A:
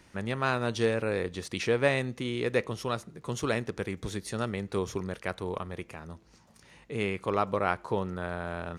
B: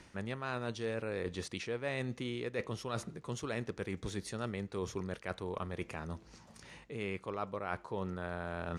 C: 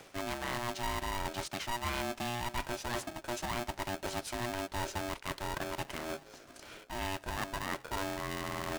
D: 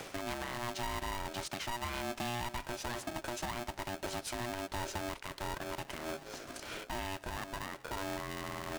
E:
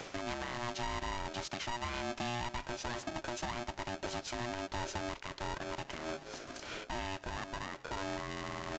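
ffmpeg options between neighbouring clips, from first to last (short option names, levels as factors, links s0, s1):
-af "lowpass=10000,areverse,acompressor=threshold=0.0126:ratio=6,areverse,volume=1.41"
-filter_complex "[0:a]asplit=2[s0][s1];[s1]asoftclip=type=hard:threshold=0.0133,volume=0.708[s2];[s0][s2]amix=inputs=2:normalize=0,aeval=exprs='val(0)*sgn(sin(2*PI*480*n/s))':c=same,volume=0.841"
-af "acompressor=threshold=0.00891:ratio=6,alimiter=level_in=4.73:limit=0.0631:level=0:latency=1:release=229,volume=0.211,volume=2.66"
-af "aresample=16000,aresample=44100"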